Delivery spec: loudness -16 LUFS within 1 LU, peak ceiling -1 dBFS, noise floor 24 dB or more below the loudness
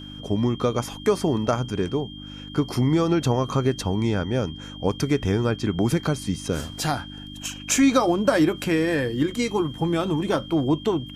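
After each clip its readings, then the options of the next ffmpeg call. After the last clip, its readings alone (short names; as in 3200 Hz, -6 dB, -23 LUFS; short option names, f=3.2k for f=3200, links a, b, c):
hum 50 Hz; harmonics up to 300 Hz; hum level -37 dBFS; steady tone 3200 Hz; tone level -41 dBFS; loudness -24.0 LUFS; peak -7.0 dBFS; loudness target -16.0 LUFS
-> -af "bandreject=f=50:t=h:w=4,bandreject=f=100:t=h:w=4,bandreject=f=150:t=h:w=4,bandreject=f=200:t=h:w=4,bandreject=f=250:t=h:w=4,bandreject=f=300:t=h:w=4"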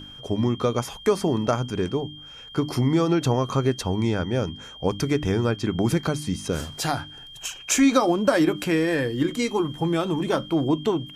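hum none; steady tone 3200 Hz; tone level -41 dBFS
-> -af "bandreject=f=3.2k:w=30"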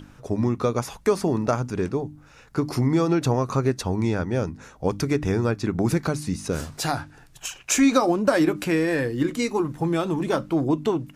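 steady tone none; loudness -24.0 LUFS; peak -7.5 dBFS; loudness target -16.0 LUFS
-> -af "volume=8dB,alimiter=limit=-1dB:level=0:latency=1"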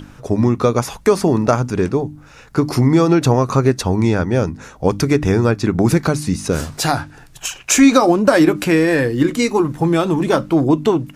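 loudness -16.0 LUFS; peak -1.0 dBFS; noise floor -43 dBFS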